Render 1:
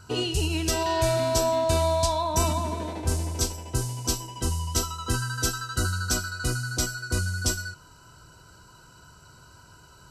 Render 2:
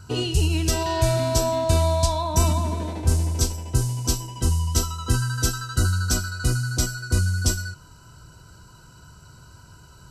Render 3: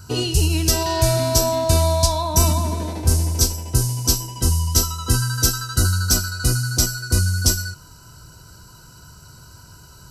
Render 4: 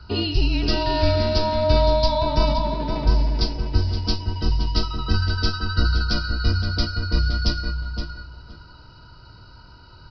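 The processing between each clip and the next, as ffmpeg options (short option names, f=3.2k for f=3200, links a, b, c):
-af "bass=f=250:g=7,treble=f=4k:g=2"
-af "aexciter=amount=1.8:drive=6:freq=4.5k,volume=2.5dB"
-filter_complex "[0:a]afreqshift=-31,asplit=2[a][b];[b]adelay=519,lowpass=f=3k:p=1,volume=-6dB,asplit=2[c][d];[d]adelay=519,lowpass=f=3k:p=1,volume=0.2,asplit=2[e][f];[f]adelay=519,lowpass=f=3k:p=1,volume=0.2[g];[c][e][g]amix=inputs=3:normalize=0[h];[a][h]amix=inputs=2:normalize=0,aresample=11025,aresample=44100,volume=-1dB"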